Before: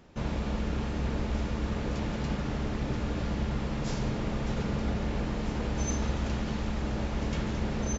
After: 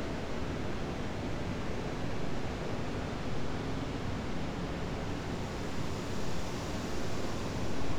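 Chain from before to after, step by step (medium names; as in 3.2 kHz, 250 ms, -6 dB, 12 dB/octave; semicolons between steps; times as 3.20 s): full-wave rectifier; Paulstretch 4.9×, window 1.00 s, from 2.54 s; trim -1.5 dB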